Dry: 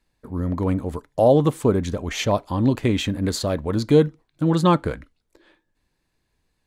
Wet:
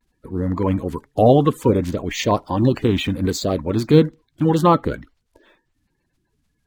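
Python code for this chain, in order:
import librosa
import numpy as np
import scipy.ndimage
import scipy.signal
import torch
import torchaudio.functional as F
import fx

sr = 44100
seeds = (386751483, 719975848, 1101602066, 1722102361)

y = fx.spec_quant(x, sr, step_db=30)
y = fx.vibrato(y, sr, rate_hz=0.58, depth_cents=48.0)
y = np.interp(np.arange(len(y)), np.arange(len(y))[::2], y[::2])
y = y * librosa.db_to_amplitude(3.0)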